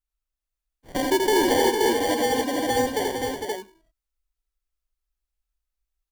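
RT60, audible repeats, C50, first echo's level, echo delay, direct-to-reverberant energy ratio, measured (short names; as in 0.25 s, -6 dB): none, 6, none, -3.5 dB, 82 ms, none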